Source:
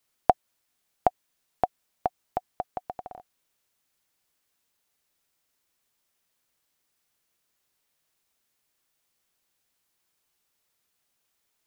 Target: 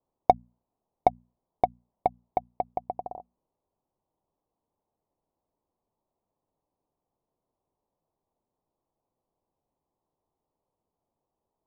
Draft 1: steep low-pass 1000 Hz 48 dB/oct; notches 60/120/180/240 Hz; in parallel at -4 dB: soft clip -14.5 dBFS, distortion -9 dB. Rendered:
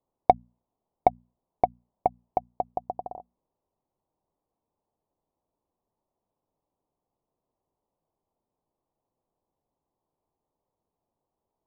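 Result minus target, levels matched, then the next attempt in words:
soft clip: distortion -5 dB
steep low-pass 1000 Hz 48 dB/oct; notches 60/120/180/240 Hz; in parallel at -4 dB: soft clip -21 dBFS, distortion -5 dB

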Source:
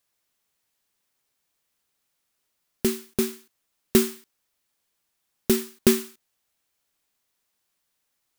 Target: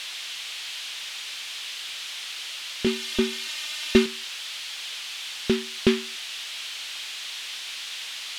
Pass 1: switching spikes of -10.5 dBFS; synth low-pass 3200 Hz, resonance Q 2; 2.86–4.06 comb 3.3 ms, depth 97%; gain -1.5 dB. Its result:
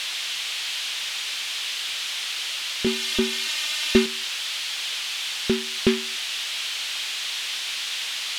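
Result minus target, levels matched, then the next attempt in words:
switching spikes: distortion +5 dB
switching spikes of -16.5 dBFS; synth low-pass 3200 Hz, resonance Q 2; 2.86–4.06 comb 3.3 ms, depth 97%; gain -1.5 dB

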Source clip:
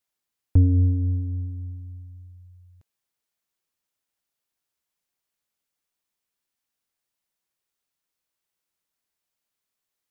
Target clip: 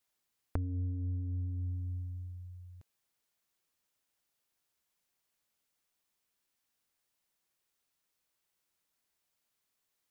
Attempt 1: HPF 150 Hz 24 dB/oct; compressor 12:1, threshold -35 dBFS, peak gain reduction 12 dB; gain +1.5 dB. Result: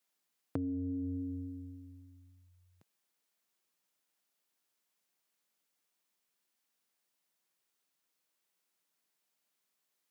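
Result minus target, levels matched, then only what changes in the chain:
125 Hz band -8.5 dB
remove: HPF 150 Hz 24 dB/oct

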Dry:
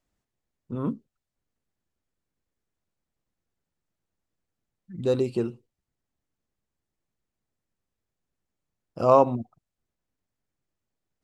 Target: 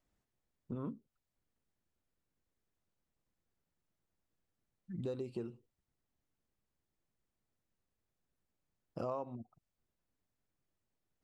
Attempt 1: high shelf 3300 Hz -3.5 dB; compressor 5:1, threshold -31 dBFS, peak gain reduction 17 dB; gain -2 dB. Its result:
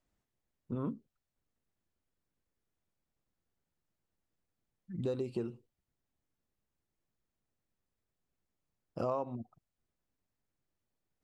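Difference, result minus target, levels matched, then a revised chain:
compressor: peak gain reduction -5 dB
high shelf 3300 Hz -3.5 dB; compressor 5:1, threshold -37 dBFS, peak gain reduction 21.5 dB; gain -2 dB

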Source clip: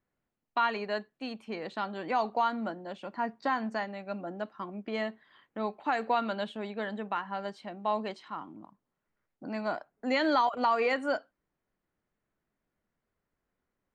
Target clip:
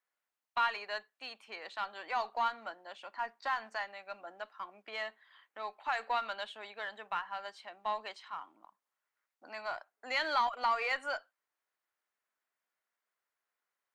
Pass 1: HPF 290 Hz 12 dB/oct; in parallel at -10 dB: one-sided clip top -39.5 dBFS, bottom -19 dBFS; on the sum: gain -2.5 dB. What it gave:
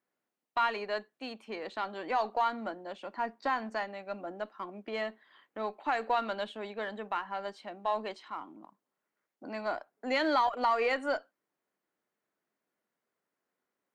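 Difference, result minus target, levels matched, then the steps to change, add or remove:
250 Hz band +14.0 dB
change: HPF 950 Hz 12 dB/oct

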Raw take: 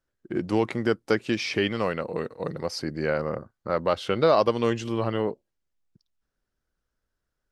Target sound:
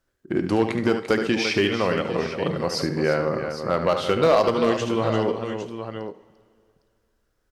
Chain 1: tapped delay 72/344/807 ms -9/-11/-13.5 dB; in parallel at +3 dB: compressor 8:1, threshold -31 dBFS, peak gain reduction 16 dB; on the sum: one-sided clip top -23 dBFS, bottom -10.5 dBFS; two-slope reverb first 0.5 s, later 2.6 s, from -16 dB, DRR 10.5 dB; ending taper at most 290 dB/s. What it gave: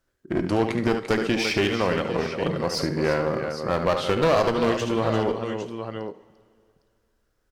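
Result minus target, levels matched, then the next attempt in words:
one-sided clip: distortion +11 dB
tapped delay 72/344/807 ms -9/-11/-13.5 dB; in parallel at +3 dB: compressor 8:1, threshold -31 dBFS, peak gain reduction 16 dB; on the sum: one-sided clip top -11.5 dBFS, bottom -10.5 dBFS; two-slope reverb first 0.5 s, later 2.6 s, from -16 dB, DRR 10.5 dB; ending taper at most 290 dB/s

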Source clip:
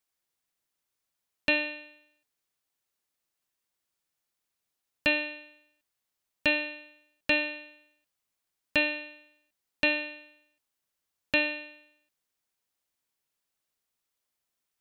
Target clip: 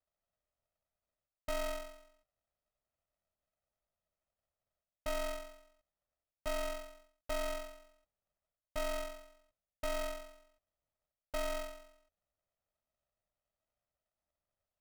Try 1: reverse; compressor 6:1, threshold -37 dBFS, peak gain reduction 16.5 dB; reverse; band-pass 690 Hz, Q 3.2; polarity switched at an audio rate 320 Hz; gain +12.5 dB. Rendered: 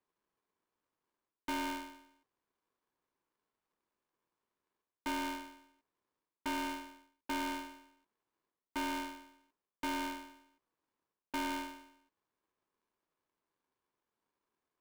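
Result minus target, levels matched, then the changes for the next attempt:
500 Hz band -11.0 dB
change: band-pass 290 Hz, Q 3.2

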